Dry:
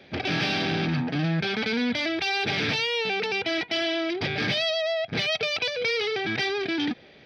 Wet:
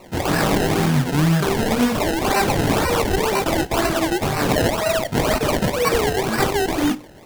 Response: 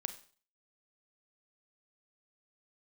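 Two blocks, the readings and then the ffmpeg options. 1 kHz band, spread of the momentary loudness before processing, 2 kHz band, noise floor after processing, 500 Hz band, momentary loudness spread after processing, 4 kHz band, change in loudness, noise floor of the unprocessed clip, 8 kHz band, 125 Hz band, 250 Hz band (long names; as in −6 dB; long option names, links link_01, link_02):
+12.0 dB, 2 LU, +2.0 dB, −40 dBFS, +8.5 dB, 2 LU, −0.5 dB, +6.0 dB, −51 dBFS, can't be measured, +10.5 dB, +8.5 dB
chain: -filter_complex "[0:a]flanger=delay=19:depth=3.8:speed=2.3,acrusher=samples=26:mix=1:aa=0.000001:lfo=1:lforange=26:lforate=2,asplit=2[link_01][link_02];[1:a]atrim=start_sample=2205,asetrate=66150,aresample=44100[link_03];[link_02][link_03]afir=irnorm=-1:irlink=0,volume=1.5dB[link_04];[link_01][link_04]amix=inputs=2:normalize=0,volume=6dB"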